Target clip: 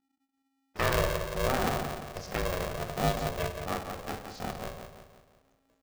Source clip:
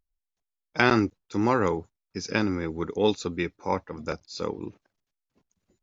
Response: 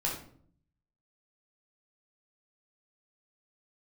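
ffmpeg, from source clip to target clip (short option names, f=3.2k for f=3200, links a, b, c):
-filter_complex "[0:a]tiltshelf=f=970:g=3,asplit=2[a][b];[b]adelay=174,lowpass=f=3.6k:p=1,volume=-7dB,asplit=2[c][d];[d]adelay=174,lowpass=f=3.6k:p=1,volume=0.47,asplit=2[e][f];[f]adelay=174,lowpass=f=3.6k:p=1,volume=0.47,asplit=2[g][h];[h]adelay=174,lowpass=f=3.6k:p=1,volume=0.47,asplit=2[i][j];[j]adelay=174,lowpass=f=3.6k:p=1,volume=0.47,asplit=2[k][l];[l]adelay=174,lowpass=f=3.6k:p=1,volume=0.47[m];[a][c][e][g][i][k][m]amix=inputs=7:normalize=0,asplit=2[n][o];[1:a]atrim=start_sample=2205,adelay=17[p];[o][p]afir=irnorm=-1:irlink=0,volume=-11dB[q];[n][q]amix=inputs=2:normalize=0,aeval=exprs='val(0)*sgn(sin(2*PI*270*n/s))':c=same,volume=-9dB"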